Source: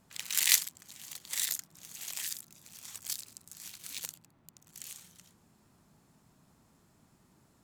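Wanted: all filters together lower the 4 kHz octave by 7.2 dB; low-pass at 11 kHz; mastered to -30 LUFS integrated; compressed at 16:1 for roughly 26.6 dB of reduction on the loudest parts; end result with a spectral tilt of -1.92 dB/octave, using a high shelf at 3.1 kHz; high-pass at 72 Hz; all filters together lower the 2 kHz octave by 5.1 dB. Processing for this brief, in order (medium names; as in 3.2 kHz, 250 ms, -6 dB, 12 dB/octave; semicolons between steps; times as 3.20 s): high-pass 72 Hz; low-pass 11 kHz; peaking EQ 2 kHz -3 dB; treble shelf 3.1 kHz -4 dB; peaking EQ 4 kHz -5 dB; compression 16:1, threshold -52 dBFS; trim +28 dB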